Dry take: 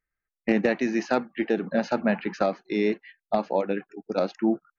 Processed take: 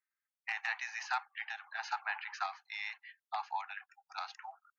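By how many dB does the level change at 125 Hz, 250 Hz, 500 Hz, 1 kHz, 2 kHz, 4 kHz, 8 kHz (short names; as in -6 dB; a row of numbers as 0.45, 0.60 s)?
under -40 dB, under -40 dB, -34.0 dB, -7.0 dB, -4.5 dB, -4.5 dB, n/a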